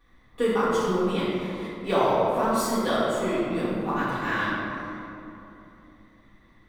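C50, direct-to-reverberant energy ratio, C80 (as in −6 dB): −3.0 dB, −14.0 dB, −1.0 dB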